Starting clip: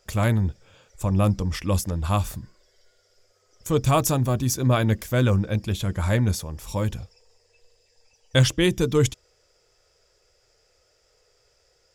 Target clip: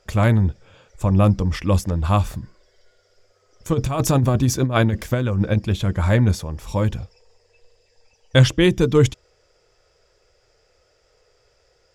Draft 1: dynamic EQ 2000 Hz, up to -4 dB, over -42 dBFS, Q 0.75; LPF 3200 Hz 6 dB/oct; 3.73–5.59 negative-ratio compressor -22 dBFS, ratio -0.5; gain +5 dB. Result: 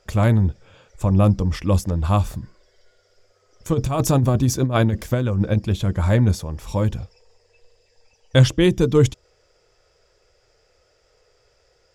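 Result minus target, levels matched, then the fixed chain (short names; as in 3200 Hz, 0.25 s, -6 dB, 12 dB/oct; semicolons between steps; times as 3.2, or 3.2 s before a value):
2000 Hz band -3.5 dB
LPF 3200 Hz 6 dB/oct; 3.73–5.59 negative-ratio compressor -22 dBFS, ratio -0.5; gain +5 dB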